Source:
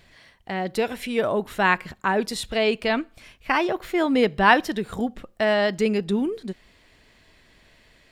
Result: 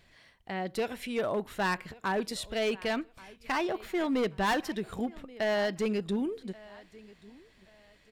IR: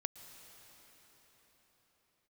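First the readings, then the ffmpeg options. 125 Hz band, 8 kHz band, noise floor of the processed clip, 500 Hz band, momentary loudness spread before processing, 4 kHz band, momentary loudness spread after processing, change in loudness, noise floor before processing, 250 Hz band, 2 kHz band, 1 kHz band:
-7.0 dB, -5.5 dB, -63 dBFS, -8.0 dB, 11 LU, -8.0 dB, 11 LU, -8.5 dB, -57 dBFS, -7.5 dB, -10.5 dB, -10.0 dB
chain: -af "aecho=1:1:1131|2262:0.0708|0.0212,asoftclip=type=hard:threshold=0.141,volume=0.447"

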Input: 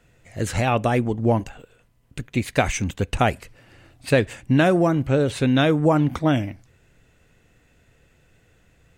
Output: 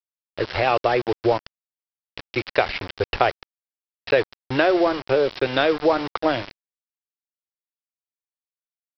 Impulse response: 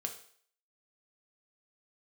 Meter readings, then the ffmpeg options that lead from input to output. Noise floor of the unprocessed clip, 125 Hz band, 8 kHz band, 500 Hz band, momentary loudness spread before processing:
-60 dBFS, -12.5 dB, under -15 dB, +2.0 dB, 17 LU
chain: -af "firequalizer=gain_entry='entry(110,0);entry(180,-17);entry(360,11);entry(3600,8)':delay=0.05:min_phase=1,acompressor=threshold=0.224:ratio=2,aresample=11025,aeval=exprs='val(0)*gte(abs(val(0)),0.0891)':c=same,aresample=44100,volume=0.596"

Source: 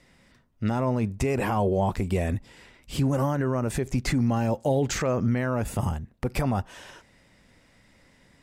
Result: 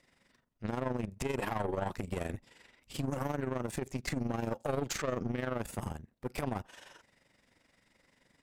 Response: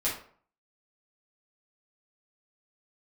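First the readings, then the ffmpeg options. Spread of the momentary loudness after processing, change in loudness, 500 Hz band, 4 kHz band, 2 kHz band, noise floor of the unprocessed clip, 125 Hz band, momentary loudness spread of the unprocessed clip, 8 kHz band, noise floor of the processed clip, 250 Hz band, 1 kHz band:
8 LU, -10.0 dB, -9.0 dB, -7.0 dB, -7.0 dB, -60 dBFS, -12.5 dB, 7 LU, -7.5 dB, -73 dBFS, -10.5 dB, -8.5 dB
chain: -af "aeval=exprs='(tanh(14.1*val(0)+0.8)-tanh(0.8))/14.1':c=same,tremolo=f=23:d=0.667,lowshelf=f=170:g=-9"

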